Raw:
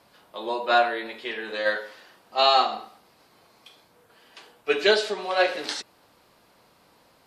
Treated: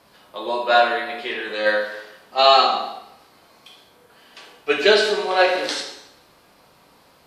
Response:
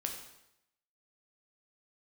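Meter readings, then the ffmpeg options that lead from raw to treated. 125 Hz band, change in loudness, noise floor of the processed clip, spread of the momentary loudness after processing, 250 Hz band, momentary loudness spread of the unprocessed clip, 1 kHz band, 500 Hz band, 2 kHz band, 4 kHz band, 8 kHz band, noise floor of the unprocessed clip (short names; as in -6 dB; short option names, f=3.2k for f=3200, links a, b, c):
n/a, +5.5 dB, -55 dBFS, 18 LU, +5.0 dB, 17 LU, +5.0 dB, +5.5 dB, +5.0 dB, +5.0 dB, +5.0 dB, -60 dBFS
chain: -filter_complex "[1:a]atrim=start_sample=2205[a];[0:a][a]afir=irnorm=-1:irlink=0,volume=4.5dB"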